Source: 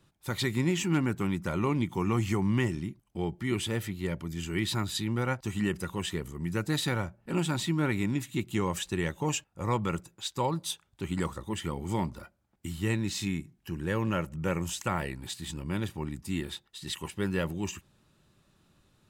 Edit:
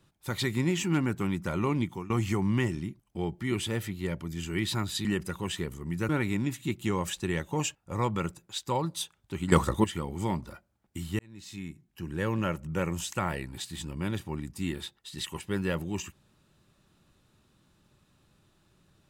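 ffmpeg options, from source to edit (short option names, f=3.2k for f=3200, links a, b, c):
-filter_complex "[0:a]asplit=7[a][b][c][d][e][f][g];[a]atrim=end=2.1,asetpts=PTS-STARTPTS,afade=t=out:st=1.83:d=0.27:silence=0.1[h];[b]atrim=start=2.1:end=5.052,asetpts=PTS-STARTPTS,afade=t=in:d=0.004:c=hsin:silence=0.1[i];[c]atrim=start=5.588:end=6.632[j];[d]atrim=start=7.778:end=11.212[k];[e]atrim=start=11.208:end=11.532,asetpts=PTS-STARTPTS,volume=11dB[l];[f]atrim=start=11.528:end=12.88,asetpts=PTS-STARTPTS,afade=t=out:st=1.348:d=0.004:c=hsin[m];[g]atrim=start=12.88,asetpts=PTS-STARTPTS,afade=t=in:d=1.06[n];[h][i]concat=n=2:v=0:a=1[o];[o][j]acrossfade=d=0.004:c1=hsin:c2=hsin[p];[p][k]acrossfade=d=0.004:c1=hsin:c2=hsin[q];[q][l]acrossfade=d=0.004:c1=hsin:c2=hsin[r];[m][n]concat=n=2:v=0:a=1[s];[r][s]acrossfade=d=0.004:c1=hsin:c2=hsin"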